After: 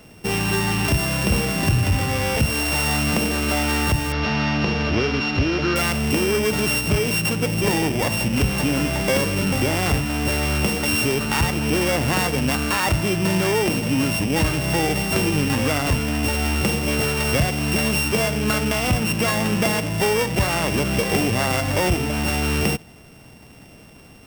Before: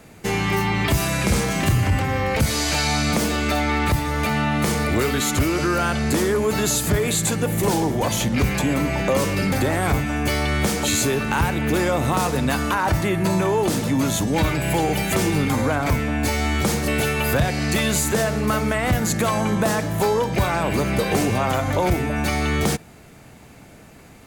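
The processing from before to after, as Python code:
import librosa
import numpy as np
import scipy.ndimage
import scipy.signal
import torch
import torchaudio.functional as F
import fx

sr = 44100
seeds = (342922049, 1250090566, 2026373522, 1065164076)

y = np.r_[np.sort(x[:len(x) // 16 * 16].reshape(-1, 16), axis=1).ravel(), x[len(x) // 16 * 16:]]
y = fx.steep_lowpass(y, sr, hz=5700.0, slope=48, at=(4.12, 5.76))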